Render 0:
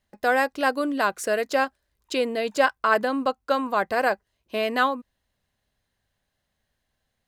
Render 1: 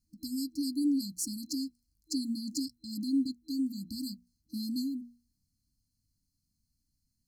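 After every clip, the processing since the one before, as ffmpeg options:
-af "afftfilt=real='re*(1-between(b*sr/4096,320,4100))':imag='im*(1-between(b*sr/4096,320,4100))':win_size=4096:overlap=0.75,bandreject=f=60:t=h:w=6,bandreject=f=120:t=h:w=6,bandreject=f=180:t=h:w=6,bandreject=f=240:t=h:w=6"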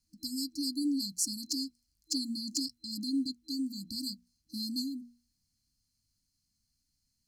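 -filter_complex "[0:a]equalizer=f=3800:w=0.31:g=10,acrossover=split=300|6500[s0][s1][s2];[s1]volume=16.8,asoftclip=hard,volume=0.0596[s3];[s0][s3][s2]amix=inputs=3:normalize=0,volume=0.668"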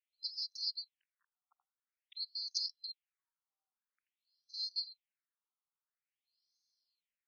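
-af "lowpass=6600,afftfilt=real='re*between(b*sr/1024,990*pow(4700/990,0.5+0.5*sin(2*PI*0.49*pts/sr))/1.41,990*pow(4700/990,0.5+0.5*sin(2*PI*0.49*pts/sr))*1.41)':imag='im*between(b*sr/1024,990*pow(4700/990,0.5+0.5*sin(2*PI*0.49*pts/sr))/1.41,990*pow(4700/990,0.5+0.5*sin(2*PI*0.49*pts/sr))*1.41)':win_size=1024:overlap=0.75,volume=1.12"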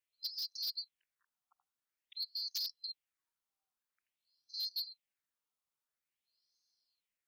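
-af "aeval=exprs='0.0237*(abs(mod(val(0)/0.0237+3,4)-2)-1)':c=same,volume=1.19"

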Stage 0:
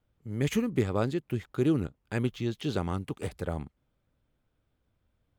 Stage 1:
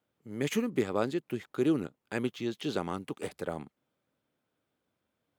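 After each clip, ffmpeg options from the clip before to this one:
-af "highpass=220"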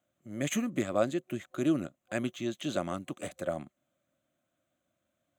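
-af "superequalizer=7b=0.316:8b=2:9b=0.501:14b=0.501:15b=2"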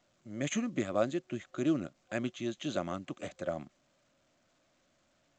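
-af "volume=0.794" -ar 16000 -c:a pcm_alaw

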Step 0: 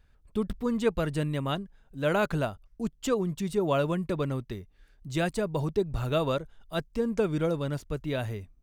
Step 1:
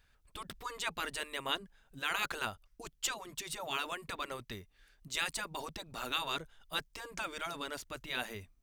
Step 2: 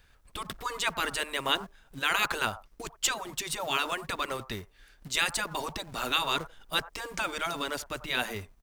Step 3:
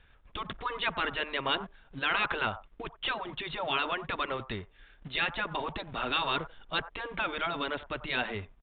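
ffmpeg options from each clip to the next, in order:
-af "afftfilt=real='re*lt(hypot(re,im),0.158)':imag='im*lt(hypot(re,im),0.158)':win_size=1024:overlap=0.75,tiltshelf=f=800:g=-6.5,volume=0.75"
-filter_complex "[0:a]acrossover=split=730|1100[s0][s1][s2];[s0]acrusher=bits=3:mode=log:mix=0:aa=0.000001[s3];[s1]aecho=1:1:53|91:0.2|0.596[s4];[s3][s4][s2]amix=inputs=3:normalize=0,volume=2.37"
-af "asoftclip=type=tanh:threshold=0.0891,aresample=8000,aresample=44100,volume=1.12"

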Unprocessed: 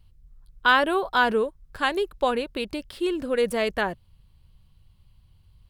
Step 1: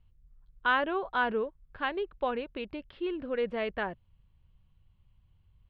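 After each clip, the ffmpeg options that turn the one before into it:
-af "lowpass=f=3100:w=0.5412,lowpass=f=3100:w=1.3066,volume=0.422"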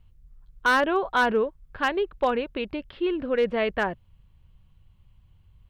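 -af "asoftclip=type=hard:threshold=0.0794,volume=2.37"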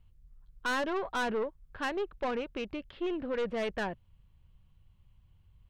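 -af "aeval=exprs='(tanh(14.1*val(0)+0.3)-tanh(0.3))/14.1':c=same,volume=0.596"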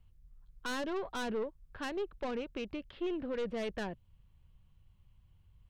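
-filter_complex "[0:a]acrossover=split=490|3000[s0][s1][s2];[s1]acompressor=threshold=0.00316:ratio=1.5[s3];[s0][s3][s2]amix=inputs=3:normalize=0,volume=0.841"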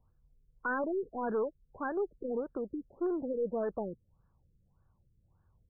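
-af "aemphasis=mode=production:type=bsi,afftfilt=real='re*lt(b*sr/1024,480*pow(1800/480,0.5+0.5*sin(2*PI*1.7*pts/sr)))':imag='im*lt(b*sr/1024,480*pow(1800/480,0.5+0.5*sin(2*PI*1.7*pts/sr)))':win_size=1024:overlap=0.75,volume=2"

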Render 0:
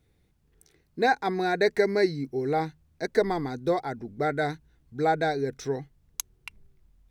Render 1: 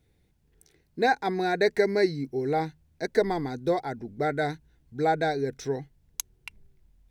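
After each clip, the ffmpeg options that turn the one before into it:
-af "equalizer=f=1200:w=5.8:g=-7"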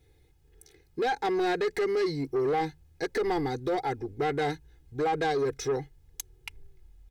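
-af "aecho=1:1:2.4:0.81,alimiter=limit=0.133:level=0:latency=1:release=39,asoftclip=type=tanh:threshold=0.0596,volume=1.26"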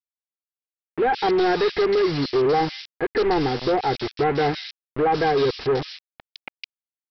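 -filter_complex "[0:a]aresample=11025,acrusher=bits=5:mix=0:aa=0.000001,aresample=44100,acrossover=split=2400[s0][s1];[s1]adelay=160[s2];[s0][s2]amix=inputs=2:normalize=0,volume=2.37"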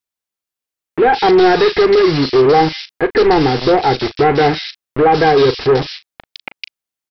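-filter_complex "[0:a]asplit=2[s0][s1];[s1]adelay=38,volume=0.211[s2];[s0][s2]amix=inputs=2:normalize=0,volume=2.82"

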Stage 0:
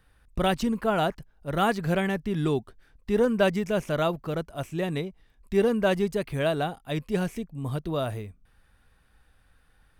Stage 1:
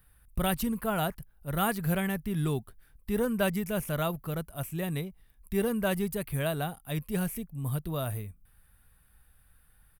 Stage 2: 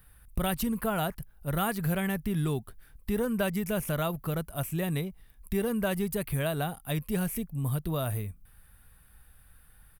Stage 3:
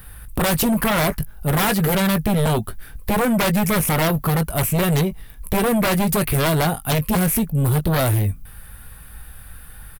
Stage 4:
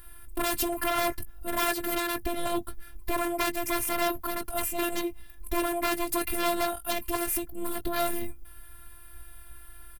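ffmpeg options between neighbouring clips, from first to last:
-af "firequalizer=gain_entry='entry(140,0);entry(310,-8);entry(1200,-4);entry(6300,-5);entry(11000,14)':delay=0.05:min_phase=1"
-af "acompressor=threshold=0.0224:ratio=2.5,volume=1.78"
-filter_complex "[0:a]asplit=2[s0][s1];[s1]adelay=19,volume=0.266[s2];[s0][s2]amix=inputs=2:normalize=0,aeval=exprs='0.178*sin(PI/2*4.47*val(0)/0.178)':c=same"
-af "afftfilt=real='hypot(re,im)*cos(PI*b)':imag='0':win_size=512:overlap=0.75,volume=0.631"

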